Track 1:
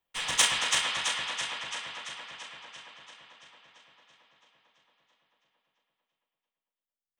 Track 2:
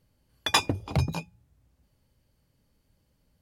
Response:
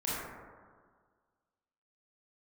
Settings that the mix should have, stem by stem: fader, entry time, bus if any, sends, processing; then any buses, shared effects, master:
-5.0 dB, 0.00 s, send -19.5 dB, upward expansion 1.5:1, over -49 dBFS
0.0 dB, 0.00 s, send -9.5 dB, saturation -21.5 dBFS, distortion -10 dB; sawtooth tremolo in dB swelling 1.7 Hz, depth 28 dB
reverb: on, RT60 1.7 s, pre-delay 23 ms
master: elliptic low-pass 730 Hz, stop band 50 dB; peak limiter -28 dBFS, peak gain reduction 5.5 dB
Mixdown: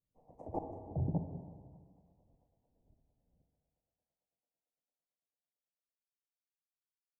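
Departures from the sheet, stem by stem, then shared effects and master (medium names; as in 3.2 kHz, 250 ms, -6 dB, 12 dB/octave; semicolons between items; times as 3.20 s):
stem 1 -5.0 dB -> -11.0 dB; master: missing peak limiter -28 dBFS, peak gain reduction 5.5 dB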